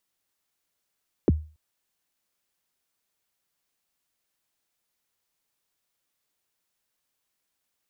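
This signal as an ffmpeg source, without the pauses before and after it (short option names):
-f lavfi -i "aevalsrc='0.237*pow(10,-3*t/0.35)*sin(2*PI*(480*0.027/log(77/480)*(exp(log(77/480)*min(t,0.027)/0.027)-1)+77*max(t-0.027,0)))':d=0.28:s=44100"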